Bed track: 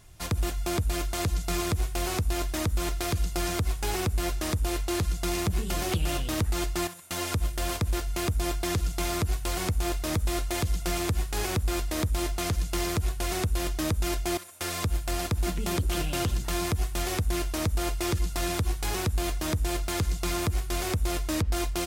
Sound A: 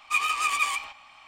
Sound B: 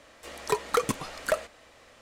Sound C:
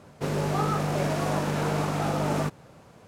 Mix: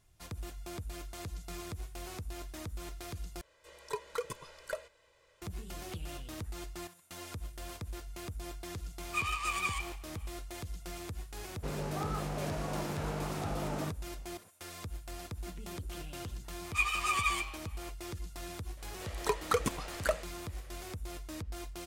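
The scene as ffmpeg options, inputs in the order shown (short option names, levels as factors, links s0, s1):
-filter_complex "[2:a]asplit=2[s0][s1];[1:a]asplit=2[s2][s3];[0:a]volume=0.188[s4];[s0]aecho=1:1:2:0.97[s5];[s3]asplit=2[s6][s7];[s7]adelay=9.1,afreqshift=1.7[s8];[s6][s8]amix=inputs=2:normalize=1[s9];[s4]asplit=2[s10][s11];[s10]atrim=end=3.414[s12];[s5]atrim=end=2.01,asetpts=PTS-STARTPTS,volume=0.168[s13];[s11]atrim=start=5.416[s14];[s2]atrim=end=1.27,asetpts=PTS-STARTPTS,volume=0.355,afade=t=in:d=0.004:c=hsin,afade=t=out:st=1.266:d=0.004:c=hsin,adelay=9030[s15];[3:a]atrim=end=3.07,asetpts=PTS-STARTPTS,volume=0.299,afade=t=in:d=0.004:c=hsin,afade=t=out:st=3.066:d=0.004:c=hsin,adelay=11420[s16];[s9]atrim=end=1.27,asetpts=PTS-STARTPTS,volume=0.708,afade=t=in:d=0.004:c=hsin,afade=t=out:st=1.266:d=0.004:c=hsin,adelay=16640[s17];[s1]atrim=end=2.01,asetpts=PTS-STARTPTS,volume=0.596,afade=t=in:d=0.004:c=hsin,afade=t=out:st=2.006:d=0.004:c=hsin,adelay=18770[s18];[s12][s13]acrossfade=d=0.004:c1=hsin:c2=hsin[s19];[s19][s14]acrossfade=d=0.004:c1=hsin:c2=hsin[s20];[s20][s15][s16][s17][s18]amix=inputs=5:normalize=0"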